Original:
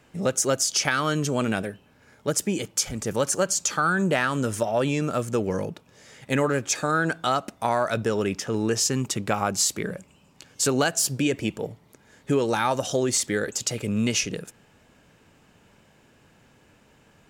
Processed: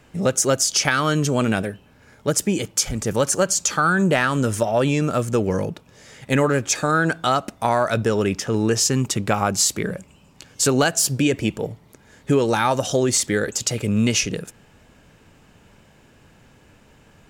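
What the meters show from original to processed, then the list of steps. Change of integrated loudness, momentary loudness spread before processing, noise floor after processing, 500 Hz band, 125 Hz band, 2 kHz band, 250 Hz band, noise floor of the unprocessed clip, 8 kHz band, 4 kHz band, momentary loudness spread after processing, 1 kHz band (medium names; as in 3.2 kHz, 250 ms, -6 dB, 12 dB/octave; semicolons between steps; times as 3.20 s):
+4.5 dB, 7 LU, -53 dBFS, +4.0 dB, +6.5 dB, +4.0 dB, +5.0 dB, -59 dBFS, +4.0 dB, +4.0 dB, 7 LU, +4.0 dB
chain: bass shelf 77 Hz +9 dB; trim +4 dB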